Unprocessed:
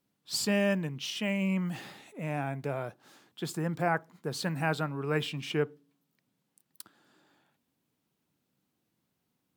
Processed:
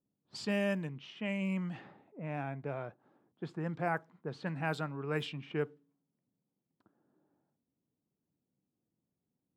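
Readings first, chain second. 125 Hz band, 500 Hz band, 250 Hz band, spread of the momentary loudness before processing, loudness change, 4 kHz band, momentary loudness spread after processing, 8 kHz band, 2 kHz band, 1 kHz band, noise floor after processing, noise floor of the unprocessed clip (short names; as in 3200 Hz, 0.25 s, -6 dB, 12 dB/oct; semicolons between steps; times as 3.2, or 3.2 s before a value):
-5.0 dB, -5.0 dB, -5.0 dB, 14 LU, -5.5 dB, -10.0 dB, 11 LU, -17.0 dB, -5.0 dB, -5.0 dB, under -85 dBFS, -81 dBFS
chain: low-pass opened by the level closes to 580 Hz, open at -24 dBFS; gain -5 dB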